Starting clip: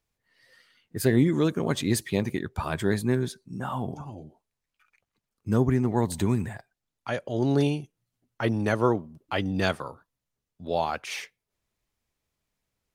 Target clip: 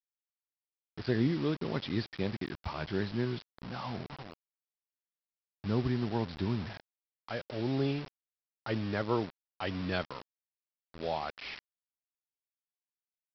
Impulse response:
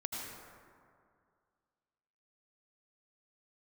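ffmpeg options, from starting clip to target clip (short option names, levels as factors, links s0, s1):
-af "asetrate=42777,aresample=44100,aresample=11025,acrusher=bits=5:mix=0:aa=0.000001,aresample=44100,volume=0.398"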